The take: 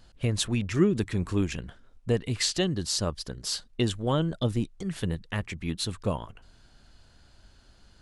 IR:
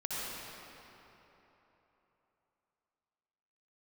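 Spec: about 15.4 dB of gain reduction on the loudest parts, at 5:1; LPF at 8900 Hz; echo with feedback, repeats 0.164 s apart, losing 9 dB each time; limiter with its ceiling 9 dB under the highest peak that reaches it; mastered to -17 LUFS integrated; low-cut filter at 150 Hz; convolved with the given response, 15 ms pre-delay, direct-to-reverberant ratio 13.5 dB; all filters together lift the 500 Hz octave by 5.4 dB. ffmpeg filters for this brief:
-filter_complex "[0:a]highpass=150,lowpass=8.9k,equalizer=f=500:t=o:g=7,acompressor=threshold=-33dB:ratio=5,alimiter=level_in=2.5dB:limit=-24dB:level=0:latency=1,volume=-2.5dB,aecho=1:1:164|328|492|656:0.355|0.124|0.0435|0.0152,asplit=2[a][b];[1:a]atrim=start_sample=2205,adelay=15[c];[b][c]afir=irnorm=-1:irlink=0,volume=-18.5dB[d];[a][d]amix=inputs=2:normalize=0,volume=21.5dB"

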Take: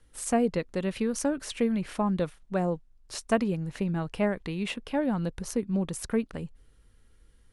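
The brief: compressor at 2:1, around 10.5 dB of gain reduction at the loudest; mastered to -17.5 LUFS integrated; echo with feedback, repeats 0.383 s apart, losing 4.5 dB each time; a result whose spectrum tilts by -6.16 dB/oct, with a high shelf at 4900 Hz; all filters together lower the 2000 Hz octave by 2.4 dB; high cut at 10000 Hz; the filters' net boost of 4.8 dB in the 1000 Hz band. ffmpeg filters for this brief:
-af "lowpass=10k,equalizer=f=1k:t=o:g=8,equalizer=f=2k:t=o:g=-4.5,highshelf=f=4.9k:g=-9,acompressor=threshold=-37dB:ratio=2,aecho=1:1:383|766|1149|1532|1915|2298|2681|3064|3447:0.596|0.357|0.214|0.129|0.0772|0.0463|0.0278|0.0167|0.01,volume=17.5dB"

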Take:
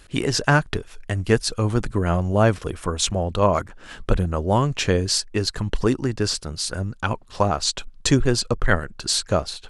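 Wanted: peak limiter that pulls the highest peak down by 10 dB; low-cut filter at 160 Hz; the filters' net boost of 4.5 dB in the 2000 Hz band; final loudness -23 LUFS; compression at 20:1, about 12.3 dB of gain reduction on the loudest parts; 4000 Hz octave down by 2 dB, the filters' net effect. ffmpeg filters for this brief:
-af "highpass=160,equalizer=f=2k:t=o:g=7,equalizer=f=4k:t=o:g=-4,acompressor=threshold=-23dB:ratio=20,volume=8.5dB,alimiter=limit=-8.5dB:level=0:latency=1"

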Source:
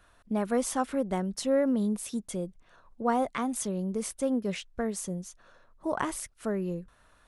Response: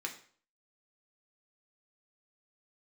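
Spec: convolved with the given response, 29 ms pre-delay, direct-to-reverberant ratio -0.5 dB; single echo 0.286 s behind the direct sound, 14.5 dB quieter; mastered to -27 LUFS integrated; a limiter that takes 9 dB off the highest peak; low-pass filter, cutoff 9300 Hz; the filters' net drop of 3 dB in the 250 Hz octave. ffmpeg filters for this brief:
-filter_complex "[0:a]lowpass=9.3k,equalizer=f=250:t=o:g=-3.5,alimiter=limit=-23.5dB:level=0:latency=1,aecho=1:1:286:0.188,asplit=2[a][b];[1:a]atrim=start_sample=2205,adelay=29[c];[b][c]afir=irnorm=-1:irlink=0,volume=-1dB[d];[a][d]amix=inputs=2:normalize=0,volume=5.5dB"

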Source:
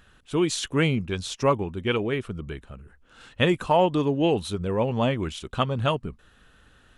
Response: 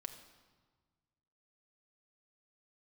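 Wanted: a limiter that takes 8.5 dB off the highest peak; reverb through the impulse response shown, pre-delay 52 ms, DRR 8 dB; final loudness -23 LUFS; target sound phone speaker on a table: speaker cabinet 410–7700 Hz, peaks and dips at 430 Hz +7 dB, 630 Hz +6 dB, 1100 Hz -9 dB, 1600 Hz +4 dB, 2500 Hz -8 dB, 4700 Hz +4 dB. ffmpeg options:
-filter_complex "[0:a]alimiter=limit=-15.5dB:level=0:latency=1,asplit=2[a][b];[1:a]atrim=start_sample=2205,adelay=52[c];[b][c]afir=irnorm=-1:irlink=0,volume=-4.5dB[d];[a][d]amix=inputs=2:normalize=0,highpass=f=410:w=0.5412,highpass=f=410:w=1.3066,equalizer=f=430:t=q:w=4:g=7,equalizer=f=630:t=q:w=4:g=6,equalizer=f=1.1k:t=q:w=4:g=-9,equalizer=f=1.6k:t=q:w=4:g=4,equalizer=f=2.5k:t=q:w=4:g=-8,equalizer=f=4.7k:t=q:w=4:g=4,lowpass=f=7.7k:w=0.5412,lowpass=f=7.7k:w=1.3066,volume=4dB"

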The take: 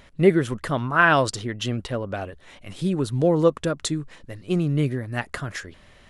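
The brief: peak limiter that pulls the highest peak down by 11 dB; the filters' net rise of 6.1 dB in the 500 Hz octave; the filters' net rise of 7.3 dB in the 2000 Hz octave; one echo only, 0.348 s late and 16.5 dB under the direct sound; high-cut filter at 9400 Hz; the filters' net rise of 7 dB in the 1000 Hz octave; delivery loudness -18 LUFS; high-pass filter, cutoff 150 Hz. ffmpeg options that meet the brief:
-af "highpass=150,lowpass=9.4k,equalizer=f=500:t=o:g=6,equalizer=f=1k:t=o:g=5,equalizer=f=2k:t=o:g=7.5,alimiter=limit=-7dB:level=0:latency=1,aecho=1:1:348:0.15,volume=4dB"

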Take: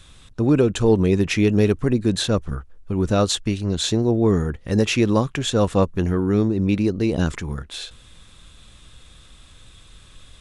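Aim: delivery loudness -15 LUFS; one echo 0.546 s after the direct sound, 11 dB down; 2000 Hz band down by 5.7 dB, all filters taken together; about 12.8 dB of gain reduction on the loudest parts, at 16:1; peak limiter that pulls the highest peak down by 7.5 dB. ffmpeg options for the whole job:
-af "equalizer=f=2k:t=o:g=-8,acompressor=threshold=-25dB:ratio=16,alimiter=level_in=0.5dB:limit=-24dB:level=0:latency=1,volume=-0.5dB,aecho=1:1:546:0.282,volume=19dB"

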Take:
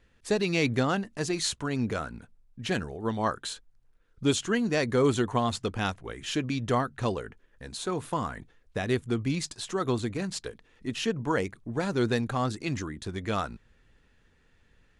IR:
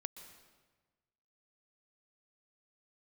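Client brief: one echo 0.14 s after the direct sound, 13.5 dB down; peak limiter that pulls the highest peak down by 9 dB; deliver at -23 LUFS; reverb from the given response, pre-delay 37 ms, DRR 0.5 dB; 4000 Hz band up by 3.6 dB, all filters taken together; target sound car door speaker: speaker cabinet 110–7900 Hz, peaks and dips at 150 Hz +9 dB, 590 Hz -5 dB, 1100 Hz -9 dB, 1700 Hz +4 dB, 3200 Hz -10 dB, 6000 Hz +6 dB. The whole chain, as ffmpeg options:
-filter_complex "[0:a]equalizer=f=4k:t=o:g=7.5,alimiter=limit=-20dB:level=0:latency=1,aecho=1:1:140:0.211,asplit=2[a][b];[1:a]atrim=start_sample=2205,adelay=37[c];[b][c]afir=irnorm=-1:irlink=0,volume=2.5dB[d];[a][d]amix=inputs=2:normalize=0,highpass=110,equalizer=f=150:t=q:w=4:g=9,equalizer=f=590:t=q:w=4:g=-5,equalizer=f=1.1k:t=q:w=4:g=-9,equalizer=f=1.7k:t=q:w=4:g=4,equalizer=f=3.2k:t=q:w=4:g=-10,equalizer=f=6k:t=q:w=4:g=6,lowpass=f=7.9k:w=0.5412,lowpass=f=7.9k:w=1.3066,volume=6dB"

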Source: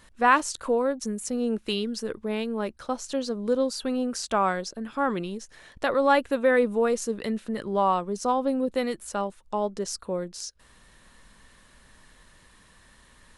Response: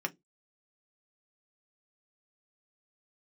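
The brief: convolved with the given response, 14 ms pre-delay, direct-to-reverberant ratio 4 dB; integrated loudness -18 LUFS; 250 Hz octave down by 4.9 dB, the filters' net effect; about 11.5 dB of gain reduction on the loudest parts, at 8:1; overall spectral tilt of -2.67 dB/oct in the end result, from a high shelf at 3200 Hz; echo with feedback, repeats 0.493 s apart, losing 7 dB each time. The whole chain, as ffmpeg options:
-filter_complex "[0:a]equalizer=f=250:t=o:g=-5.5,highshelf=f=3.2k:g=4.5,acompressor=threshold=-26dB:ratio=8,aecho=1:1:493|986|1479|1972|2465:0.447|0.201|0.0905|0.0407|0.0183,asplit=2[a][b];[1:a]atrim=start_sample=2205,adelay=14[c];[b][c]afir=irnorm=-1:irlink=0,volume=-8dB[d];[a][d]amix=inputs=2:normalize=0,volume=12.5dB"

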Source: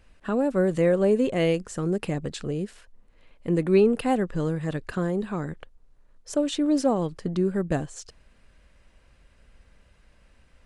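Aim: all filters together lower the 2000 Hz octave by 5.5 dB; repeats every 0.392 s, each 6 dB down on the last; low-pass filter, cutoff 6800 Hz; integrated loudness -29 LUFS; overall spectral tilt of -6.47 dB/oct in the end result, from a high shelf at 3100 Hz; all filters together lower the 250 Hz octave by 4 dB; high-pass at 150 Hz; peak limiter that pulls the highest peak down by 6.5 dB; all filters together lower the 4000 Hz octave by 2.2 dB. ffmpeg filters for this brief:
-af "highpass=150,lowpass=6.8k,equalizer=f=250:t=o:g=-4.5,equalizer=f=2k:t=o:g=-8.5,highshelf=f=3.1k:g=6.5,equalizer=f=4k:t=o:g=-4,alimiter=limit=-18.5dB:level=0:latency=1,aecho=1:1:392|784|1176|1568|1960|2352:0.501|0.251|0.125|0.0626|0.0313|0.0157"

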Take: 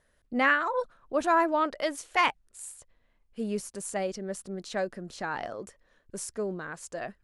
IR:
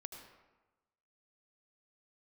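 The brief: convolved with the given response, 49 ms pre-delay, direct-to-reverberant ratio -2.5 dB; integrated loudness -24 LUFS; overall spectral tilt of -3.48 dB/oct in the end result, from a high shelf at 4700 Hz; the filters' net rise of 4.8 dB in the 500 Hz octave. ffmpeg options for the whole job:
-filter_complex "[0:a]equalizer=f=500:t=o:g=6,highshelf=f=4.7k:g=4,asplit=2[a][b];[1:a]atrim=start_sample=2205,adelay=49[c];[b][c]afir=irnorm=-1:irlink=0,volume=6.5dB[d];[a][d]amix=inputs=2:normalize=0,volume=-1dB"

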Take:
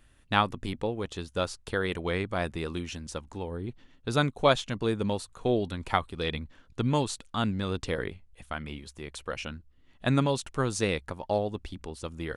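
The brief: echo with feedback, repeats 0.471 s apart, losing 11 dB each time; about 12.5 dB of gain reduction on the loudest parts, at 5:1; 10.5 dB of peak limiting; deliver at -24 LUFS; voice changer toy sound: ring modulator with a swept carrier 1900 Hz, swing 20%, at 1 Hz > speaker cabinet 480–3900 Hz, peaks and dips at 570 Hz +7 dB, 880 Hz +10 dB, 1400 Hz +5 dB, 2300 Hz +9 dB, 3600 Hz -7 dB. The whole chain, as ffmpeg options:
-af "acompressor=threshold=-31dB:ratio=5,alimiter=level_in=2dB:limit=-24dB:level=0:latency=1,volume=-2dB,aecho=1:1:471|942|1413:0.282|0.0789|0.0221,aeval=exprs='val(0)*sin(2*PI*1900*n/s+1900*0.2/1*sin(2*PI*1*n/s))':c=same,highpass=480,equalizer=f=570:t=q:w=4:g=7,equalizer=f=880:t=q:w=4:g=10,equalizer=f=1.4k:t=q:w=4:g=5,equalizer=f=2.3k:t=q:w=4:g=9,equalizer=f=3.6k:t=q:w=4:g=-7,lowpass=f=3.9k:w=0.5412,lowpass=f=3.9k:w=1.3066,volume=10dB"

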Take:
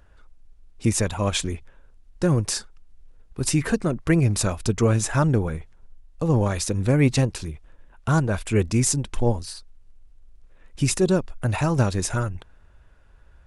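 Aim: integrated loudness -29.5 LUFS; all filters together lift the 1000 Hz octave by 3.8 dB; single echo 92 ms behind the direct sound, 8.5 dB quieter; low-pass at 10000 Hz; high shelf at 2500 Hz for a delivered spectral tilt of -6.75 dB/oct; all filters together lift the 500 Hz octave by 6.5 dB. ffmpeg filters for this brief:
-af "lowpass=10k,equalizer=f=500:t=o:g=7.5,equalizer=f=1k:t=o:g=3.5,highshelf=f=2.5k:g=-6.5,aecho=1:1:92:0.376,volume=-9dB"

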